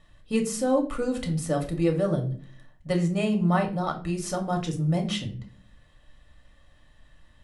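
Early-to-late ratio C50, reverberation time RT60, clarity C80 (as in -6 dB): 11.5 dB, 0.45 s, 16.0 dB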